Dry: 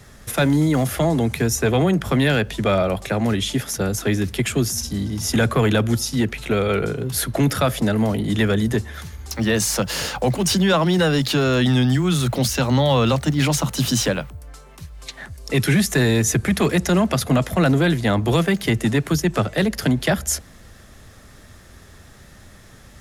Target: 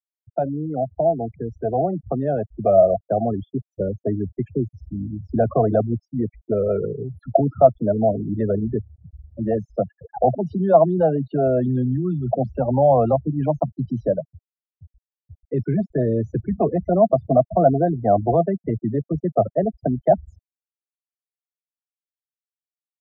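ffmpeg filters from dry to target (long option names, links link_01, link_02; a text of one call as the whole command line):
ffmpeg -i in.wav -af "afftfilt=real='re*gte(hypot(re,im),0.2)':imag='im*gte(hypot(re,im),0.2)':win_size=1024:overlap=0.75,dynaudnorm=framelen=280:gausssize=17:maxgain=11.5dB,lowpass=frequency=690:width_type=q:width=8.2,volume=-11dB" out.wav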